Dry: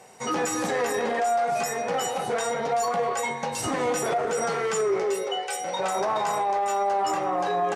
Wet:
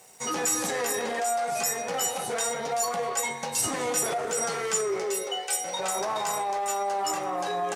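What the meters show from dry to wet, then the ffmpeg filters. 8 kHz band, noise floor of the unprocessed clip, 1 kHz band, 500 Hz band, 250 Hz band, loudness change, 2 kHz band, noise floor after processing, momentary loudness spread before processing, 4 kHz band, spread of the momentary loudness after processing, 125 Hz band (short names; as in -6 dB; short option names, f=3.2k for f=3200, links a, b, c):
+6.0 dB, -33 dBFS, -4.0 dB, -4.5 dB, -4.5 dB, -1.5 dB, -2.0 dB, -35 dBFS, 4 LU, +1.5 dB, 3 LU, -4.5 dB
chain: -af "crystalizer=i=3:c=0,aeval=exprs='sgn(val(0))*max(abs(val(0))-0.00224,0)':c=same,volume=-4.5dB"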